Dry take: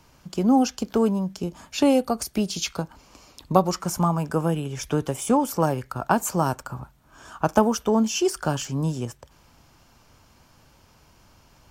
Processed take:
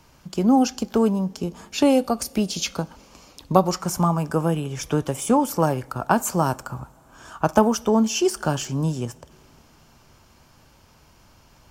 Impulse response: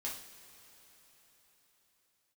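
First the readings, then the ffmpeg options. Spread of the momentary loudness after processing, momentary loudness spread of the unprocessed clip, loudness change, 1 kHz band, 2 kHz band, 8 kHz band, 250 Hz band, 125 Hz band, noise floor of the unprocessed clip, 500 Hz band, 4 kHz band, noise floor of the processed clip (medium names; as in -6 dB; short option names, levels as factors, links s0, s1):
11 LU, 11 LU, +1.5 dB, +1.5 dB, +1.5 dB, +1.5 dB, +1.5 dB, +1.5 dB, -57 dBFS, +1.5 dB, +1.5 dB, -55 dBFS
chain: -filter_complex "[0:a]asplit=2[s0][s1];[1:a]atrim=start_sample=2205[s2];[s1][s2]afir=irnorm=-1:irlink=0,volume=0.133[s3];[s0][s3]amix=inputs=2:normalize=0,volume=1.12"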